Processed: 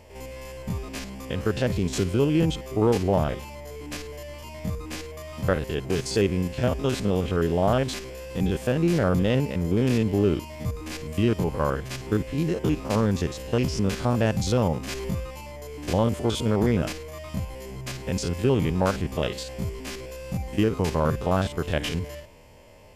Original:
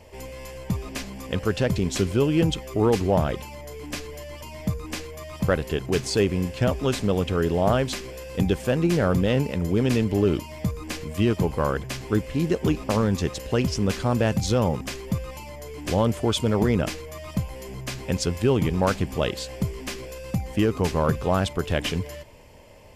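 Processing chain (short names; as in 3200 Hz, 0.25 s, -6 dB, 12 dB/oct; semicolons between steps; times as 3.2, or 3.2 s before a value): stepped spectrum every 50 ms; 13.64–15.24 upward compressor, threshold -24 dBFS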